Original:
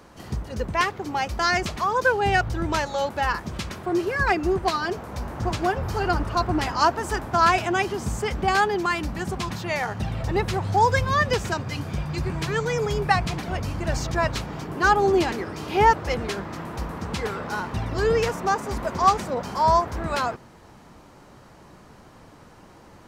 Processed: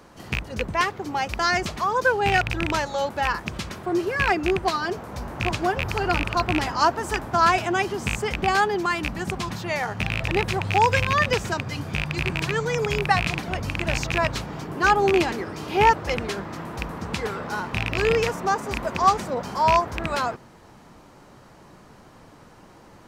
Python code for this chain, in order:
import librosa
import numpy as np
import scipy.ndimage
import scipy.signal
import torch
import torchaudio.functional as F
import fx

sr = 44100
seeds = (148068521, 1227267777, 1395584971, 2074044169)

y = fx.rattle_buzz(x, sr, strikes_db=-24.0, level_db=-11.0)
y = fx.peak_eq(y, sr, hz=66.0, db=-4.0, octaves=0.74)